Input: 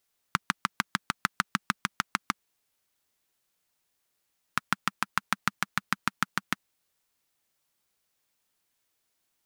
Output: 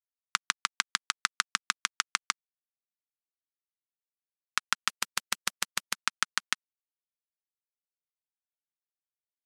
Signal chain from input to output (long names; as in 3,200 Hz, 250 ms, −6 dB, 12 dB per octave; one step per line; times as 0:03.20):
bit-depth reduction 10 bits, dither none
meter weighting curve ITU-R 468
0:04.88–0:05.94: every bin compressed towards the loudest bin 2 to 1
level −4.5 dB